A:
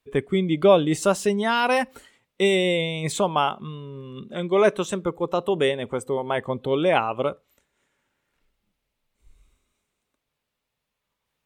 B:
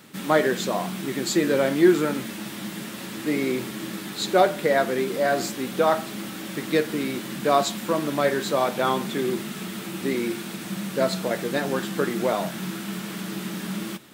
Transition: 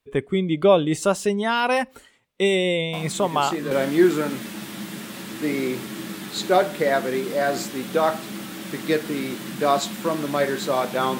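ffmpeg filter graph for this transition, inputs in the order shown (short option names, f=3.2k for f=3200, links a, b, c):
-filter_complex "[1:a]asplit=2[a][b];[0:a]apad=whole_dur=11.19,atrim=end=11.19,atrim=end=3.712[c];[b]atrim=start=1.548:end=9.03[d];[a]atrim=start=0.77:end=1.55,asetpts=PTS-STARTPTS,volume=-6.5dB,afade=t=in:d=0.004:c=hsin,afade=t=out:st=0.776:d=0.004:c=hsin,adelay=2930[e];[c][d]acrossfade=d=0.004:c1=hsin:c2=hsin[f];[f][e]amix=inputs=2:normalize=0"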